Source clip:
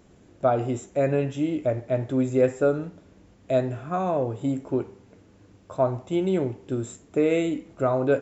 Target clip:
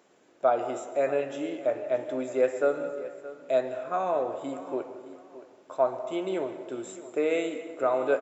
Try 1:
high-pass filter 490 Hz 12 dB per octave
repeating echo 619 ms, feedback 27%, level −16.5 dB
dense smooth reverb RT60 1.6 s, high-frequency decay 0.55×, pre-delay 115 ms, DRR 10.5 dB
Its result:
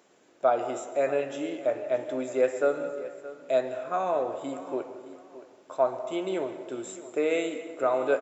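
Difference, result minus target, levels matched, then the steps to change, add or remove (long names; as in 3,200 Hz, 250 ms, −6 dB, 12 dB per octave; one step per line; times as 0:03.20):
8,000 Hz band +3.0 dB
add after high-pass filter: high-shelf EQ 3,100 Hz −3.5 dB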